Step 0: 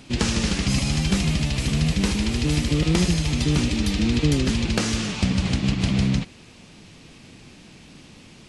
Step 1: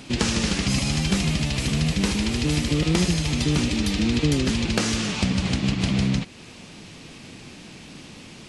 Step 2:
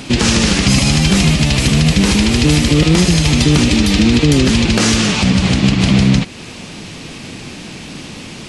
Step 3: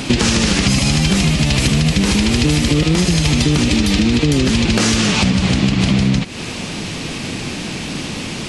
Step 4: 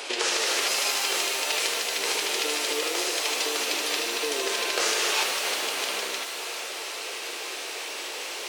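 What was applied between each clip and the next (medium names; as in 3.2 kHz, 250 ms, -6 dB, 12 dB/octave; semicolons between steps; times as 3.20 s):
in parallel at +1 dB: compression, threshold -31 dBFS, peak gain reduction 15.5 dB; on the sum: bass shelf 98 Hz -6 dB; trim -1.5 dB
loudness maximiser +13 dB; trim -1 dB
compression 6:1, threshold -17 dBFS, peak gain reduction 10 dB; trim +5.5 dB
elliptic high-pass 410 Hz, stop band 70 dB; pitch-shifted reverb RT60 2.1 s, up +7 st, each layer -2 dB, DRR 4.5 dB; trim -7.5 dB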